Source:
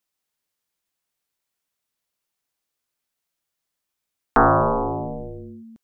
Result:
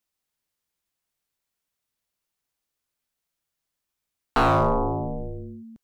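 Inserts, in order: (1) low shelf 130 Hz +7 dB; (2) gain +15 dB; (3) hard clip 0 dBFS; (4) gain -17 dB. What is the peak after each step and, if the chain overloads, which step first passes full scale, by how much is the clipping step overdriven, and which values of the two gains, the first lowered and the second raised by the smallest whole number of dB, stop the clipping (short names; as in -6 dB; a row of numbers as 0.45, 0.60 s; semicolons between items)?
-6.0, +9.0, 0.0, -17.0 dBFS; step 2, 9.0 dB; step 2 +6 dB, step 4 -8 dB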